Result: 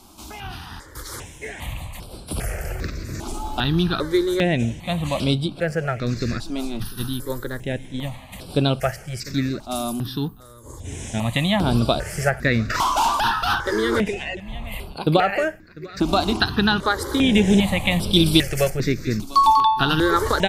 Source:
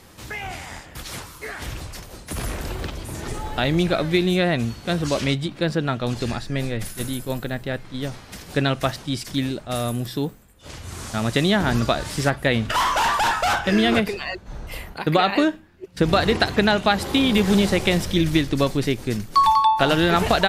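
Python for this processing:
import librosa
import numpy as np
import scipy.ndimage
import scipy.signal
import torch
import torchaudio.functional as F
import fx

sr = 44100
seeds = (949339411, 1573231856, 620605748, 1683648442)

y = fx.spec_box(x, sr, start_s=10.28, length_s=0.57, low_hz=1200.0, high_hz=6300.0, gain_db=-16)
y = fx.high_shelf(y, sr, hz=2300.0, db=11.0, at=(18.13, 18.7))
y = y + 10.0 ** (-19.0 / 20.0) * np.pad(y, (int(698 * sr / 1000.0), 0))[:len(y)]
y = fx.phaser_held(y, sr, hz=2.5, low_hz=490.0, high_hz=6500.0)
y = F.gain(torch.from_numpy(y), 2.5).numpy()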